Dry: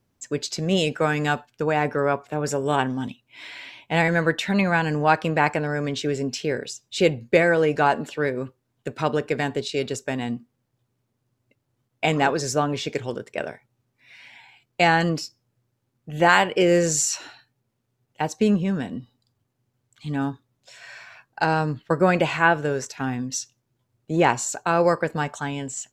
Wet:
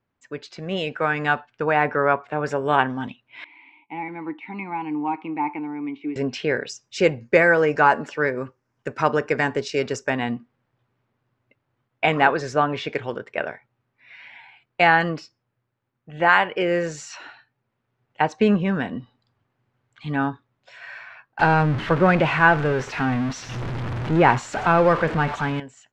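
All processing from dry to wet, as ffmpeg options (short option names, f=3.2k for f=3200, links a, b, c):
-filter_complex "[0:a]asettb=1/sr,asplit=3[a][b][c];[a]atrim=end=3.444[d];[b]atrim=start=3.44:end=6.16,asetpts=PTS-STARTPTS,afade=t=in:d=0.004:c=qsin,afade=t=out:st=2.716:d=0.004:c=qsin,deesser=0.85,asplit=3[e][f][g];[e]bandpass=f=300:t=q:w=8,volume=0dB[h];[f]bandpass=f=870:t=q:w=8,volume=-6dB[i];[g]bandpass=f=2.24k:t=q:w=8,volume=-9dB[j];[h][i][j]amix=inputs=3:normalize=0[k];[c]atrim=start=6.156[l];[d][k]acrossfade=d=0.004:c1=hsin:c2=qsin[m];[m][l]acrossfade=d=0.004:c1=qsin:c2=hsin,asettb=1/sr,asplit=3[n][o][p];[n]atrim=end=6.694[q];[o]atrim=start=6.69:end=10.1,asetpts=PTS-STARTPTS,afade=t=in:d=0.004:c=qsin,afade=t=out:st=3.406:d=0.004:c=qsin,highshelf=f=4.6k:t=q:w=3:g=6,bandreject=f=710:w=15[r];[p]atrim=start=10.096[s];[q][r]acrossfade=d=0.004:c1=hsin:c2=qsin[t];[t][s]acrossfade=d=0.004:c1=qsin:c2=hsin,asettb=1/sr,asplit=3[u][v][w];[u]atrim=end=21.394[x];[v]atrim=start=21.39:end=25.6,asetpts=PTS-STARTPTS,afade=t=in:d=0.004:c=qsin,afade=t=out:st=4.206:d=0.004:c=qsin,aeval=exprs='val(0)+0.5*0.0668*sgn(val(0))':c=same,lowshelf=f=270:g=10.5[y];[w]atrim=start=25.596[z];[x][y]acrossfade=d=0.004:c1=hsin:c2=qsin[aa];[aa][z]acrossfade=d=0.004:c1=qsin:c2=hsin,lowpass=1.6k,tiltshelf=f=970:g=-8,dynaudnorm=f=500:g=5:m=11.5dB,volume=-1dB"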